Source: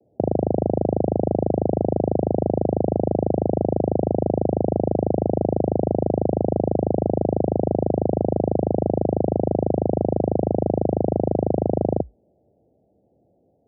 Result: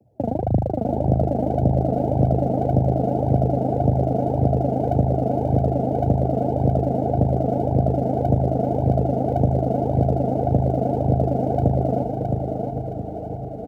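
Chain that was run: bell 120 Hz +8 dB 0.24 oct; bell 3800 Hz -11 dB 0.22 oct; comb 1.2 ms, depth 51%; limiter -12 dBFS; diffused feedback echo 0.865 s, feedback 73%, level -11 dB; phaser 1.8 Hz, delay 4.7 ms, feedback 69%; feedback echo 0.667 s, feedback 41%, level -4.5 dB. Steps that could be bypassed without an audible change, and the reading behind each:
bell 3800 Hz: input band ends at 910 Hz

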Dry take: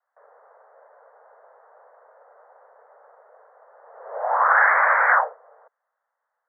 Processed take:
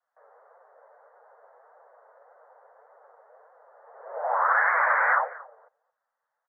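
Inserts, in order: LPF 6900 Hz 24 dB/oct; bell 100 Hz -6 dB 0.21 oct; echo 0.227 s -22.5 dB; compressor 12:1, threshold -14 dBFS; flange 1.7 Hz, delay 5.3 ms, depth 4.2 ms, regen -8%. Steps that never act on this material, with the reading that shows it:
LPF 6900 Hz: input band ends at 2400 Hz; bell 100 Hz: input band starts at 400 Hz

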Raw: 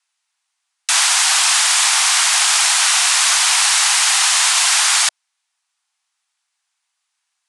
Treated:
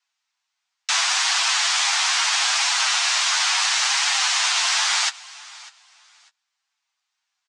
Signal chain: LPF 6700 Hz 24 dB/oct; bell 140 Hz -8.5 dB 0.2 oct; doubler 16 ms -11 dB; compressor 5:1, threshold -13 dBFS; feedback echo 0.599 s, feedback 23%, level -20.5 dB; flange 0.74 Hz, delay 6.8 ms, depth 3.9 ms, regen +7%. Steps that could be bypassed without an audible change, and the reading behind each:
bell 140 Hz: input band starts at 570 Hz

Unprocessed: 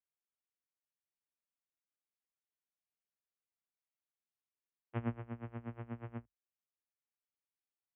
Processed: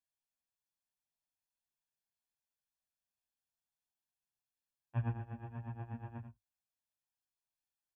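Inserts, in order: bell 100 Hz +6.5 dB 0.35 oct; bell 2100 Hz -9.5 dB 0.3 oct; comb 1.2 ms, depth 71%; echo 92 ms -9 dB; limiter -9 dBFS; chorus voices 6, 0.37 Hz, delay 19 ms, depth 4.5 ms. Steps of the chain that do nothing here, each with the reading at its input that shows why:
limiter -9 dBFS: input peak -22.0 dBFS

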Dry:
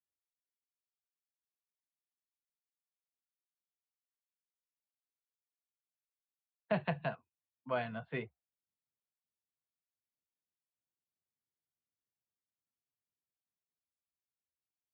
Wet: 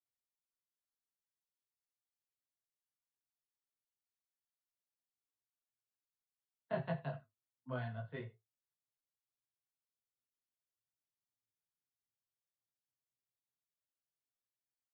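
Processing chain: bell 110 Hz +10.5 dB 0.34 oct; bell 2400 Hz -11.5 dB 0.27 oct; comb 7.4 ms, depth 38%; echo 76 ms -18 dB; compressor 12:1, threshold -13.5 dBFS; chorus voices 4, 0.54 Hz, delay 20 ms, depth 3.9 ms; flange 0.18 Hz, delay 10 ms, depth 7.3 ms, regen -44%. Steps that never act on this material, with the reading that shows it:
compressor, threshold -13.5 dBFS: input peak -20.0 dBFS

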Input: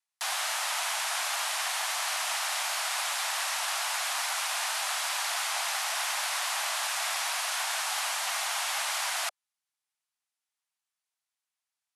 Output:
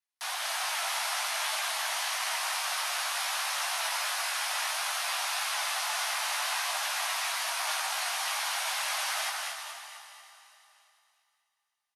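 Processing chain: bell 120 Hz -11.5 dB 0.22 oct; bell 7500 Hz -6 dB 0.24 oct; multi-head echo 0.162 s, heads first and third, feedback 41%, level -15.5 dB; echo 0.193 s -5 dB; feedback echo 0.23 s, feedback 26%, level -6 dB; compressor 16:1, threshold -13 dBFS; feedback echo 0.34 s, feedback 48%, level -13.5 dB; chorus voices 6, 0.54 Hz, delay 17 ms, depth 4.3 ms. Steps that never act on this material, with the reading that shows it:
bell 120 Hz: input band starts at 480 Hz; compressor, threshold -13 dBFS: input peak -16.0 dBFS

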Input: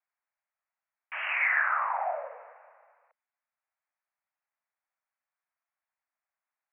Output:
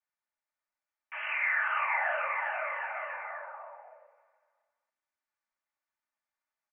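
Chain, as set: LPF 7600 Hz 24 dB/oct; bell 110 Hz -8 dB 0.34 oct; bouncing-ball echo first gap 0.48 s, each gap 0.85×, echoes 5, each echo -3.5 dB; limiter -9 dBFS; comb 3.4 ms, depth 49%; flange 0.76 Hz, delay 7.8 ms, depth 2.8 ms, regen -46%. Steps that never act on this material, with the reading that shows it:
LPF 7600 Hz: input band ends at 3000 Hz; bell 110 Hz: input band starts at 450 Hz; limiter -9 dBFS: input peak -14.0 dBFS

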